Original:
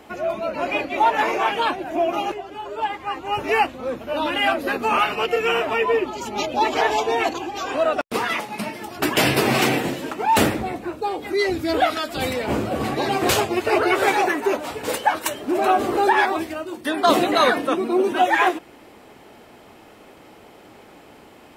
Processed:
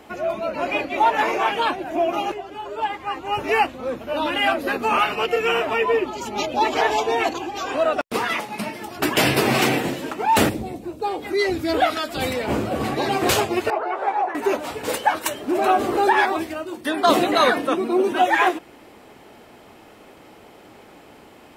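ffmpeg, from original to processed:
-filter_complex "[0:a]asettb=1/sr,asplit=3[a][b][c];[a]atrim=end=10.494[d];[b]atrim=start=10.49:end=11,asetpts=PTS-STARTPTS,afade=t=in:d=0.004:c=qsin,afade=t=out:st=0.506:d=0.004:c=qsin,equalizer=f=1.5k:t=o:w=1.9:g=-14.5[e];[c]atrim=start=10.996[f];[d][e]acrossfade=d=0.004:c1=hsin:c2=qsin[g];[g][f]acrossfade=d=0.004:c1=qsin:c2=hsin,asettb=1/sr,asplit=3[h][i][j];[h]atrim=end=13.704[k];[i]atrim=start=13.7:end=14.35,asetpts=PTS-STARTPTS,afade=t=in:d=0.004:c=qsin,afade=t=out:st=0.646:d=0.004:c=qsin,bandpass=f=820:t=q:w=2.2[l];[j]atrim=start=14.346[m];[k][l]acrossfade=d=0.004:c1=hsin:c2=qsin[n];[n][m]acrossfade=d=0.004:c1=qsin:c2=hsin"

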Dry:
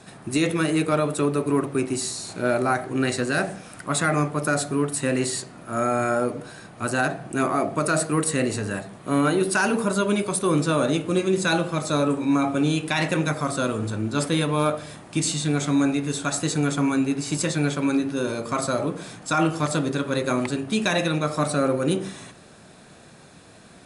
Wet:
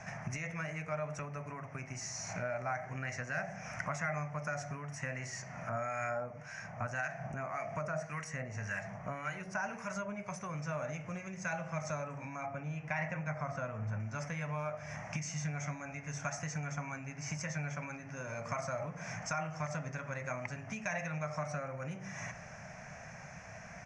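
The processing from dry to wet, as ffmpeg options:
-filter_complex "[0:a]asettb=1/sr,asplit=3[a][b][c];[a]atrim=end=5.694[d];[b]atrim=start=5.69:end=10.29,asetpts=PTS-STARTPTS,afade=t=in:d=0.004:c=qsin,afade=t=out:st=4.596:d=0.004:c=qsin,acrossover=split=1400[e][f];[e]aeval=exprs='val(0)*(1-0.7/2+0.7/2*cos(2*PI*1.8*n/s))':c=same[g];[f]aeval=exprs='val(0)*(1-0.7/2-0.7/2*cos(2*PI*1.8*n/s))':c=same[h];[g][h]amix=inputs=2:normalize=0[i];[c]atrim=start=10.286[j];[d][i]acrossfade=d=0.004:c1=hsin:c2=qsin[k];[k][j]acrossfade=d=0.004:c1=qsin:c2=hsin,asettb=1/sr,asplit=3[l][m][n];[l]atrim=end=12.464[o];[m]atrim=start=12.46:end=14,asetpts=PTS-STARTPTS,afade=t=in:d=0.004:c=qsin,afade=t=out:st=1.536:d=0.004:c=qsin,lowpass=f=1.9k:p=1[p];[n]atrim=start=13.996[q];[o][p]acrossfade=d=0.004:c1=hsin:c2=qsin[r];[r][q]acrossfade=d=0.004:c1=qsin:c2=hsin,bandreject=f=46.93:t=h:w=4,bandreject=f=93.86:t=h:w=4,bandreject=f=140.79:t=h:w=4,acompressor=threshold=-34dB:ratio=8,firequalizer=gain_entry='entry(150,0);entry(330,-24);entry(630,1);entry(1200,-4);entry(2100,6);entry(3800,-26);entry(5900,5);entry(8400,-26)':delay=0.05:min_phase=1,volume=2.5dB"

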